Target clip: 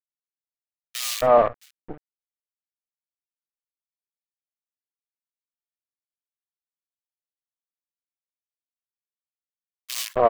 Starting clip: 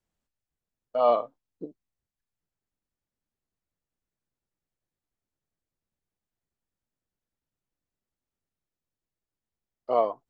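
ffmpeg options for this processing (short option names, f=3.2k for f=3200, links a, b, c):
-filter_complex "[0:a]acrusher=bits=5:dc=4:mix=0:aa=0.000001,acrossover=split=2100[a][b];[a]adelay=270[c];[c][b]amix=inputs=2:normalize=0,volume=5.5dB"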